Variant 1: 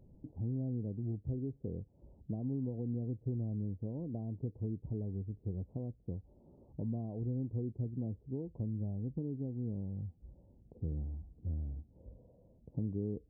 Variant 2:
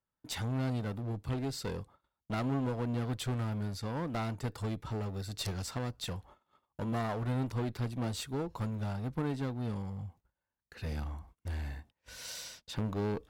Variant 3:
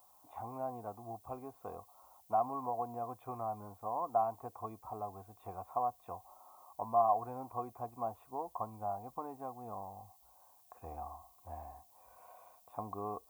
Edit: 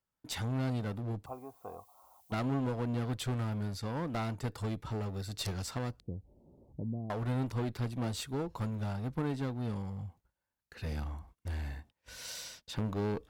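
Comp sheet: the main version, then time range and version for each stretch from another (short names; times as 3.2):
2
1.26–2.32 from 3
6–7.1 from 1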